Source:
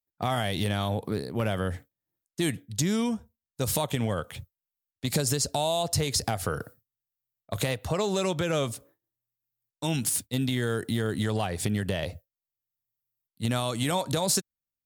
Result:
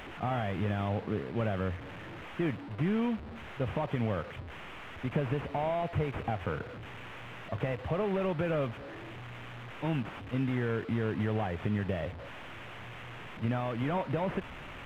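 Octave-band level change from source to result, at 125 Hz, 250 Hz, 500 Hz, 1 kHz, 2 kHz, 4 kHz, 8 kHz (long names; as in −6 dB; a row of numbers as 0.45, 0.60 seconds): −3.0 dB, −3.0 dB, −3.5 dB, −3.5 dB, −3.0 dB, −14.5 dB, below −30 dB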